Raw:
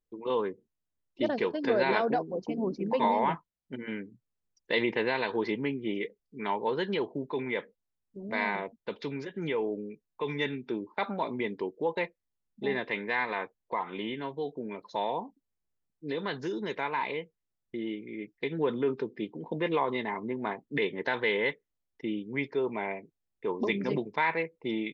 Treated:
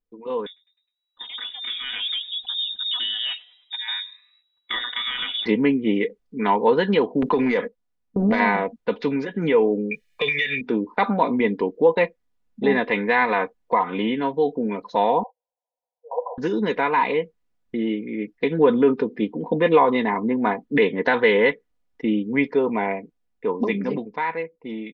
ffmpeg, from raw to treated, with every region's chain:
ffmpeg -i in.wav -filter_complex "[0:a]asettb=1/sr,asplit=3[link_01][link_02][link_03];[link_01]atrim=end=0.464[link_04];[link_02]atrim=start=0.46:end=5.46,asetpts=PTS-STARTPTS,afade=type=in:duration=0.004:curve=qsin,afade=type=out:start_time=4.996:duration=0.004:curve=qsin,acompressor=threshold=-30dB:ratio=10:attack=3.2:release=140:knee=1:detection=peak,asplit=5[link_05][link_06][link_07][link_08][link_09];[link_06]adelay=103,afreqshift=-68,volume=-23dB[link_10];[link_07]adelay=206,afreqshift=-136,volume=-28.2dB[link_11];[link_08]adelay=309,afreqshift=-204,volume=-33.4dB[link_12];[link_09]adelay=412,afreqshift=-272,volume=-38.6dB[link_13];[link_05][link_10][link_11][link_12][link_13]amix=inputs=5:normalize=0,atrim=end_sample=220500,lowpass=frequency=3300:width_type=q:width=0.5098,lowpass=frequency=3300:width_type=q:width=0.6013,lowpass=frequency=3300:width_type=q:width=0.9,lowpass=frequency=3300:width_type=q:width=2.563,afreqshift=-3900[link_14];[link_03]atrim=start=5.456[link_15];[link_04][link_14]acrossfade=duration=0.004:curve1=hsin:curve2=qsin[link_16];[link_16][link_15]acrossfade=duration=0.004:curve1=qsin:curve2=hsin,asettb=1/sr,asplit=3[link_17][link_18][link_19];[link_17]atrim=end=7.224[link_20];[link_18]atrim=start=7.22:end=8.4,asetpts=PTS-STARTPTS,afade=type=in:duration=0.004:curve=qsin,afade=type=out:start_time=1.176:duration=0.004:curve=qsin,agate=range=-19dB:threshold=-52dB:ratio=16:release=100:detection=peak,acompressor=threshold=-40dB:ratio=20:attack=3.2:release=140:knee=1:detection=peak,aeval=exprs='0.0596*sin(PI/2*3.16*val(0)/0.0596)':channel_layout=same[link_21];[link_19]atrim=start=8.396[link_22];[link_20][link_21]acrossfade=duration=0.004:curve1=hsin:curve2=qsin[link_23];[link_23][link_22]acrossfade=duration=0.004:curve1=qsin:curve2=hsin,asettb=1/sr,asplit=3[link_24][link_25][link_26];[link_24]atrim=end=9.914[link_27];[link_25]atrim=start=9.91:end=10.61,asetpts=PTS-STARTPTS,afade=type=in:duration=0.004:curve=qsin,afade=type=out:start_time=0.696:duration=0.004:curve=qsin,highshelf=frequency=1500:width_type=q:width=3:gain=13,aecho=1:1:1.7:0.7,atrim=end_sample=30870,acompressor=threshold=-27dB:ratio=12:attack=3.2:release=140:knee=1:detection=peak[link_28];[link_26]atrim=start=10.606[link_29];[link_27][link_28]acrossfade=duration=0.004:curve1=hsin:curve2=qsin[link_30];[link_30][link_29]acrossfade=duration=0.004:curve1=qsin:curve2=hsin,asettb=1/sr,asplit=3[link_31][link_32][link_33];[link_31]atrim=end=15.234[link_34];[link_32]atrim=start=15.23:end=16.38,asetpts=PTS-STARTPTS,afade=type=in:duration=0.004:curve=qsin,afade=type=out:start_time=1.146:duration=0.004:curve=qsin,aeval=exprs='(mod(17.8*val(0)+1,2)-1)/17.8':channel_layout=same,asuperpass=centerf=700:order=20:qfactor=1.3[link_35];[link_33]atrim=start=16.376[link_36];[link_34][link_35]acrossfade=duration=0.004:curve1=hsin:curve2=qsin[link_37];[link_37][link_36]acrossfade=duration=0.004:curve1=qsin:curve2=hsin,lowpass=frequency=2100:poles=1,aecho=1:1:4.1:0.53,dynaudnorm=framelen=200:gausssize=17:maxgain=11.5dB" out.wav

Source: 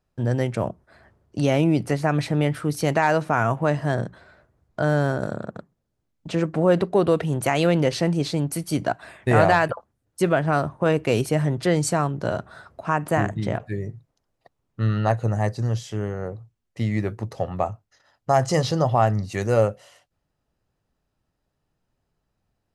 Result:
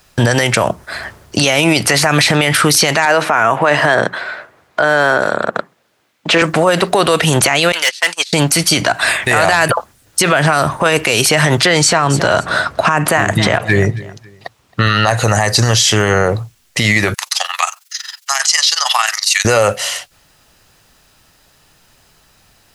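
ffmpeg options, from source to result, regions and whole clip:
ffmpeg -i in.wav -filter_complex "[0:a]asettb=1/sr,asplit=3[link_01][link_02][link_03];[link_01]atrim=end=3.054[link_04];[link_02]atrim=start=3.05:end=6.42,asetpts=PTS-STARTPTS,afade=type=in:duration=0.004:curve=qsin,afade=type=out:start_time=3.366:duration=0.004:curve=qsin,highpass=110,bass=frequency=250:gain=-11,treble=frequency=4000:gain=-13[link_05];[link_03]atrim=start=6.416[link_06];[link_04][link_05]acrossfade=duration=0.004:curve1=hsin:curve2=qsin[link_07];[link_07][link_06]acrossfade=duration=0.004:curve1=qsin:curve2=hsin,asettb=1/sr,asplit=3[link_08][link_09][link_10];[link_08]atrim=end=7.724[link_11];[link_09]atrim=start=7.72:end=8.33,asetpts=PTS-STARTPTS,afade=type=in:duration=0.004:curve=qsin,afade=type=out:start_time=0.606:duration=0.004:curve=qsin,agate=range=-35dB:threshold=-21dB:ratio=16:release=100:detection=peak,highpass=1300,asoftclip=type=hard:threshold=-32dB[link_12];[link_10]atrim=start=8.326[link_13];[link_11][link_12]acrossfade=duration=0.004:curve1=hsin:curve2=qsin[link_14];[link_14][link_13]acrossfade=duration=0.004:curve1=qsin:curve2=hsin,asettb=1/sr,asplit=3[link_15][link_16][link_17];[link_15]atrim=end=11.624[link_18];[link_16]atrim=start=11.62:end=14.87,asetpts=PTS-STARTPTS,afade=type=in:duration=0.004:curve=qsin,afade=type=out:start_time=3.246:duration=0.004:curve=qsin,highpass=48,highshelf=frequency=6000:gain=-9.5,aecho=1:1:270|540:0.0708|0.0212,atrim=end_sample=143325[link_19];[link_17]atrim=start=14.866[link_20];[link_18][link_19]acrossfade=duration=0.004:curve1=hsin:curve2=qsin[link_21];[link_21][link_20]acrossfade=duration=0.004:curve1=qsin:curve2=hsin,asettb=1/sr,asplit=3[link_22][link_23][link_24];[link_22]atrim=end=17.144[link_25];[link_23]atrim=start=17.14:end=19.45,asetpts=PTS-STARTPTS,afade=type=in:duration=0.004:curve=qsin,afade=type=out:start_time=2.306:duration=0.004:curve=qsin,highpass=frequency=970:width=0.5412,highpass=frequency=970:width=1.3066,tiltshelf=frequency=1500:gain=-9.5,tremolo=f=22:d=0.788[link_26];[link_24]atrim=start=19.446[link_27];[link_25][link_26]acrossfade=duration=0.004:curve1=hsin:curve2=qsin[link_28];[link_28][link_27]acrossfade=duration=0.004:curve1=qsin:curve2=hsin,tiltshelf=frequency=1100:gain=-8.5,acrossover=split=520|6300[link_29][link_30][link_31];[link_29]acompressor=threshold=-36dB:ratio=4[link_32];[link_30]acompressor=threshold=-26dB:ratio=4[link_33];[link_31]acompressor=threshold=-41dB:ratio=4[link_34];[link_32][link_33][link_34]amix=inputs=3:normalize=0,alimiter=level_in=28dB:limit=-1dB:release=50:level=0:latency=1,volume=-1dB" out.wav

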